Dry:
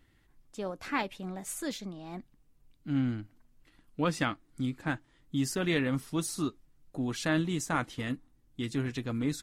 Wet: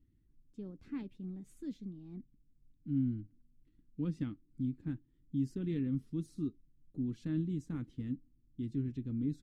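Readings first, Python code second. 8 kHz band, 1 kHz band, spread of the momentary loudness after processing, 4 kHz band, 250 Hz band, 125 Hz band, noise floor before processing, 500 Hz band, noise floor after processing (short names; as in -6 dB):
under -25 dB, under -25 dB, 13 LU, under -20 dB, -4.0 dB, -3.0 dB, -67 dBFS, -12.5 dB, -71 dBFS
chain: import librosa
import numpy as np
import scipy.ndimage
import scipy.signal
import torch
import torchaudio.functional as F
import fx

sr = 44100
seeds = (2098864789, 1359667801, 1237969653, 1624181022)

y = fx.curve_eq(x, sr, hz=(270.0, 420.0, 640.0, 3500.0, 11000.0), db=(0, -9, -26, -20, -26))
y = F.gain(torch.from_numpy(y), -3.0).numpy()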